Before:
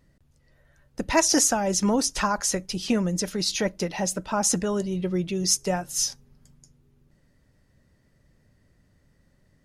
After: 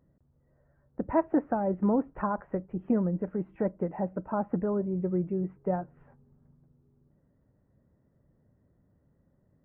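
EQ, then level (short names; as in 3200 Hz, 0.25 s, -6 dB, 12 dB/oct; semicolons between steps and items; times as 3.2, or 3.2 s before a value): Gaussian blur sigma 7.1 samples; HPF 92 Hz 6 dB/oct; -1.5 dB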